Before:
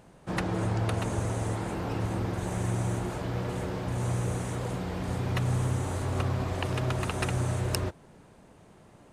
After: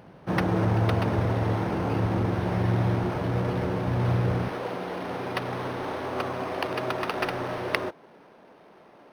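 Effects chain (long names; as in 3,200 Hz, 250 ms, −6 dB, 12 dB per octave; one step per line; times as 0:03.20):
high-pass filter 79 Hz 12 dB per octave, from 0:04.48 330 Hz
linearly interpolated sample-rate reduction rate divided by 6×
level +6 dB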